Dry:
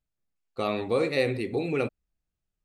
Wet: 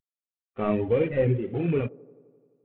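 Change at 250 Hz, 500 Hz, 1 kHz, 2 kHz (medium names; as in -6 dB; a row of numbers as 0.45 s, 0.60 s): +3.0 dB, +1.5 dB, -2.0 dB, -5.5 dB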